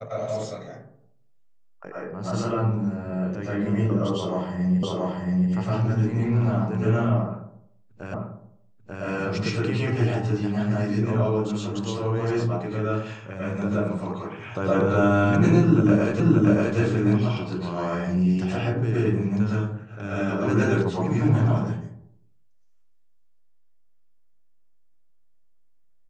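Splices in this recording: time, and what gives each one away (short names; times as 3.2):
4.83 repeat of the last 0.68 s
8.14 repeat of the last 0.89 s
16.2 repeat of the last 0.58 s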